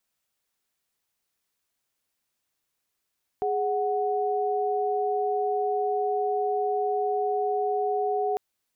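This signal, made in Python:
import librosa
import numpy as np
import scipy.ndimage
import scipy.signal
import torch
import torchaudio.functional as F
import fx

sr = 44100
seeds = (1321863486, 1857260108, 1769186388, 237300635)

y = fx.chord(sr, length_s=4.95, notes=(68, 78), wave='sine', level_db=-26.0)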